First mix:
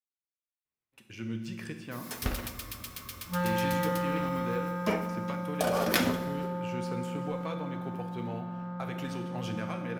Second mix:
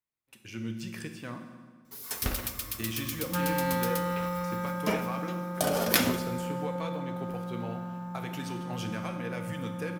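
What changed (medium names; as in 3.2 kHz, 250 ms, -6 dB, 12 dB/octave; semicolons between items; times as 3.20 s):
speech: entry -0.65 s; master: add treble shelf 5.2 kHz +8 dB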